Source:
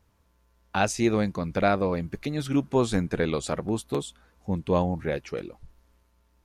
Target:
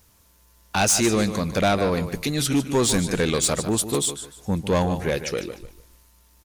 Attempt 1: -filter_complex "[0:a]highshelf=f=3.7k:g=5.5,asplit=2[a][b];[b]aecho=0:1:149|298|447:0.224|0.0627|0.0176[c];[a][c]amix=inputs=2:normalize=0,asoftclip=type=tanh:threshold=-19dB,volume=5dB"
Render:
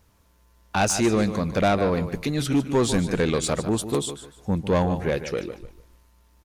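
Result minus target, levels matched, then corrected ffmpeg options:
8000 Hz band -5.5 dB
-filter_complex "[0:a]highshelf=f=3.7k:g=17.5,asplit=2[a][b];[b]aecho=0:1:149|298|447:0.224|0.0627|0.0176[c];[a][c]amix=inputs=2:normalize=0,asoftclip=type=tanh:threshold=-19dB,volume=5dB"

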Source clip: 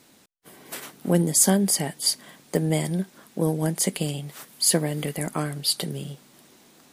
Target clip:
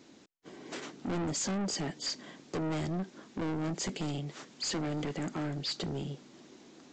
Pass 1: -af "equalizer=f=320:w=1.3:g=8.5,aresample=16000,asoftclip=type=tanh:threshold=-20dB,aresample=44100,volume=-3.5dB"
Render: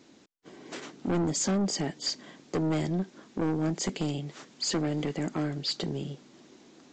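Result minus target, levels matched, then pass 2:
soft clip: distortion -4 dB
-af "equalizer=f=320:w=1.3:g=8.5,aresample=16000,asoftclip=type=tanh:threshold=-27.5dB,aresample=44100,volume=-3.5dB"

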